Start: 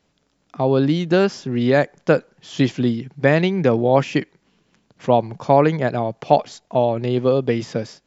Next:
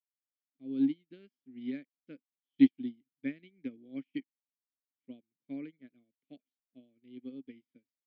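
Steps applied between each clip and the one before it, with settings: vowel filter i; upward expansion 2.5:1, over -45 dBFS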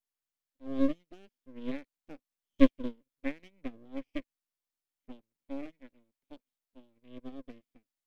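half-wave rectifier; trim +5 dB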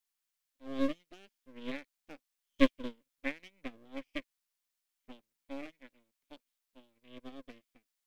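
tilt shelf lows -6 dB, about 760 Hz

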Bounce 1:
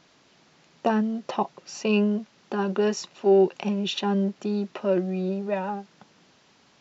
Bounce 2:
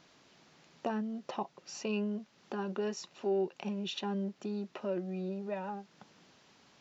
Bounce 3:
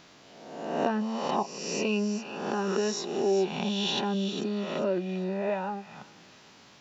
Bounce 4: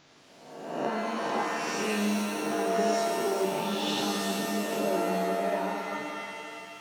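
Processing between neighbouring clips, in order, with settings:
compression 1.5:1, threshold -43 dBFS, peak gain reduction 10 dB; trim -3.5 dB
reverse spectral sustain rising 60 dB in 1.11 s; feedback echo behind a high-pass 401 ms, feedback 34%, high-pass 2.4 kHz, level -8 dB; trim +5.5 dB
pitch-shifted reverb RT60 2.2 s, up +7 st, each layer -2 dB, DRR -0.5 dB; trim -5.5 dB

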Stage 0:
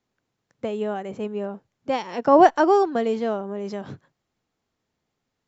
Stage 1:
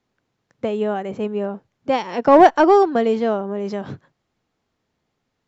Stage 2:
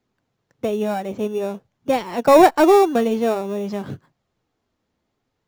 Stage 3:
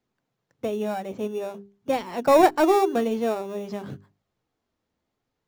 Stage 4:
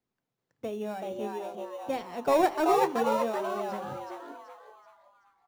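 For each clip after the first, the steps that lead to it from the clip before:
in parallel at -11 dB: wavefolder -13 dBFS; on the sum: distance through air 55 m; trim +3 dB
flange 0.51 Hz, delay 0.4 ms, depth 3.5 ms, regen -60%; in parallel at -9 dB: sample-rate reducer 3.1 kHz, jitter 0%; on the sum: trim +2 dB
hum notches 50/100/150/200/250/300/350/400 Hz; trim -5 dB
on a send: frequency-shifting echo 380 ms, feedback 40%, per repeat +150 Hz, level -3 dB; on the sum: two-slope reverb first 0.75 s, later 3.5 s, from -25 dB, DRR 18 dB; trim -7.5 dB

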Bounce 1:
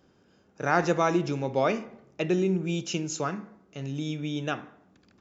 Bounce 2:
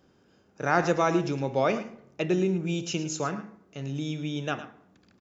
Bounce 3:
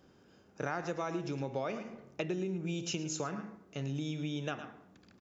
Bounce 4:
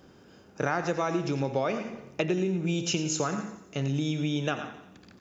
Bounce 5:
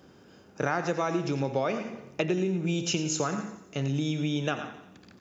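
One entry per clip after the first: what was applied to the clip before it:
delay 109 ms -13 dB
compression 6:1, threshold -33 dBFS, peak gain reduction 15.5 dB
thinning echo 88 ms, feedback 57%, high-pass 1 kHz, level -13 dB; trim +8 dB
high-pass 62 Hz

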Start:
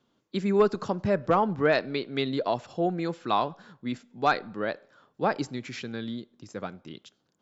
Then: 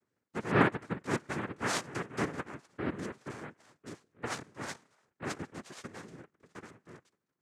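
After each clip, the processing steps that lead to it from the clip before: two resonant band-passes 840 Hz, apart 2.2 oct; noise-vocoded speech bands 3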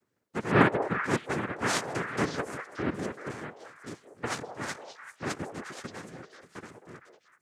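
repeats whose band climbs or falls 192 ms, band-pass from 600 Hz, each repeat 1.4 oct, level -3 dB; trim +4 dB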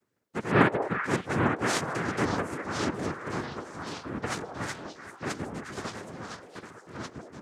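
ever faster or slower copies 734 ms, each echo -3 st, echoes 2, each echo -6 dB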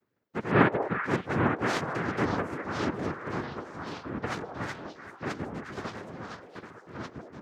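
peaking EQ 9.1 kHz -14 dB 1.3 oct

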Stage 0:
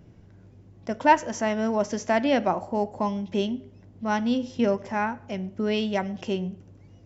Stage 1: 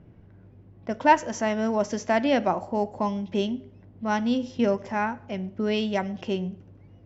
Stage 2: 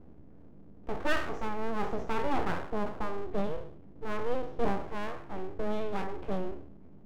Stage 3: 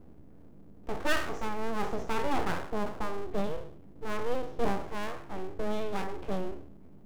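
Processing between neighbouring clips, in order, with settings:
level-controlled noise filter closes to 2.4 kHz, open at -20.5 dBFS
spectral sustain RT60 0.58 s; FFT filter 180 Hz 0 dB, 1.9 kHz -15 dB, 5.5 kHz -29 dB; full-wave rectifier
treble shelf 4.8 kHz +11 dB

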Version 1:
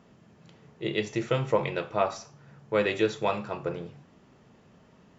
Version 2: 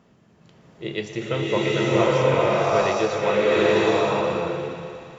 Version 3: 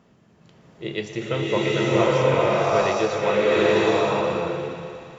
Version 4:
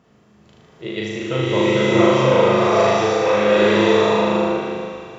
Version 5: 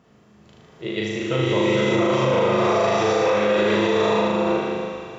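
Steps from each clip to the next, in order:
thinning echo 118 ms, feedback 81%, high-pass 210 Hz, level -14.5 dB; swelling reverb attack 840 ms, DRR -8 dB
no audible change
flutter echo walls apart 6.6 m, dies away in 1.2 s
peak limiter -11 dBFS, peak gain reduction 9 dB

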